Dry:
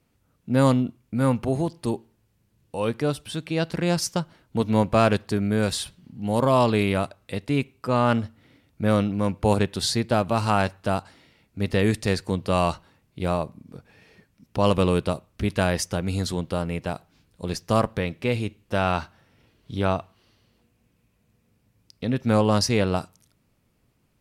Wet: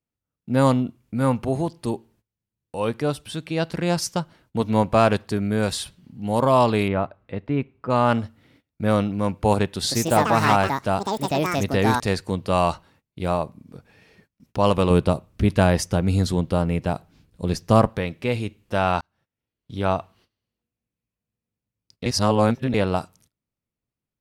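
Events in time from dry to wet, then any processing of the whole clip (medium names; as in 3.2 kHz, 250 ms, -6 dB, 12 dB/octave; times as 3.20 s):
6.88–7.90 s: low-pass 1.8 kHz
9.66–12.71 s: ever faster or slower copies 184 ms, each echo +6 st, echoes 2
14.90–17.90 s: bass shelf 440 Hz +7 dB
19.01–19.93 s: fade in
22.06–22.74 s: reverse
whole clip: gate -56 dBFS, range -21 dB; dynamic bell 850 Hz, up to +4 dB, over -31 dBFS, Q 1.4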